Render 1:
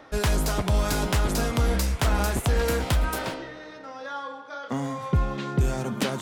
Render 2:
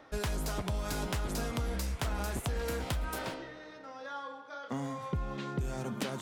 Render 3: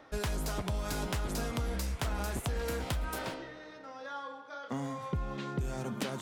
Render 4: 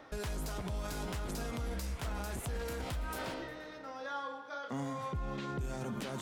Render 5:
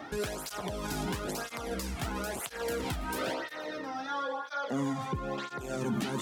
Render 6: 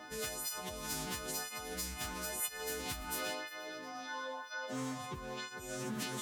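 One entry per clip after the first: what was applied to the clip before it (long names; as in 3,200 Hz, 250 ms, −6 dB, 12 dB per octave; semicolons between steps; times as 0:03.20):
downward compressor, threshold −23 dBFS, peak gain reduction 6 dB; level −7 dB
no processing that can be heard
brickwall limiter −32 dBFS, peak gain reduction 10 dB; echo machine with several playback heads 119 ms, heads first and third, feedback 47%, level −23.5 dB; level +1.5 dB
in parallel at +2 dB: brickwall limiter −41 dBFS, peak gain reduction 11.5 dB; on the sum: through-zero flanger with one copy inverted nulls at 1 Hz, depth 2.1 ms; level +6 dB
every partial snapped to a pitch grid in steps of 3 semitones; highs frequency-modulated by the lows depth 0.19 ms; level −8.5 dB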